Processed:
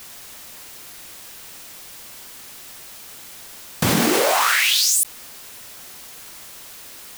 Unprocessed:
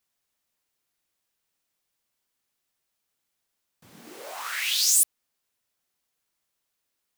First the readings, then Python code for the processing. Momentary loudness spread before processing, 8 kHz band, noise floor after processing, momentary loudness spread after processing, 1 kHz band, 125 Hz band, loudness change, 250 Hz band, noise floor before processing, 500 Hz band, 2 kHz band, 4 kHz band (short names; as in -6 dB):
17 LU, +4.0 dB, -40 dBFS, 22 LU, +18.5 dB, n/a, +4.5 dB, +29.5 dB, -80 dBFS, +23.5 dB, +13.0 dB, +8.0 dB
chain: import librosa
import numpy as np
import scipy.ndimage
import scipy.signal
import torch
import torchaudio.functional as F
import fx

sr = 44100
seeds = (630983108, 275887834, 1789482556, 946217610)

y = fx.env_flatten(x, sr, amount_pct=100)